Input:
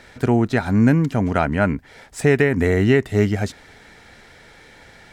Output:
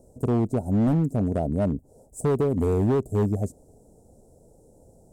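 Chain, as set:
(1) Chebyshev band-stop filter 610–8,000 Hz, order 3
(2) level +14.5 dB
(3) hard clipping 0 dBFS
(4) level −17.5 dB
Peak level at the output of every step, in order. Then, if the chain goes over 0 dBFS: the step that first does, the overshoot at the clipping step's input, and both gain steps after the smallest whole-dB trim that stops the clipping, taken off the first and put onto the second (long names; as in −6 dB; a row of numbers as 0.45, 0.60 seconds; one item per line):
−6.5, +8.0, 0.0, −17.5 dBFS
step 2, 8.0 dB
step 2 +6.5 dB, step 4 −9.5 dB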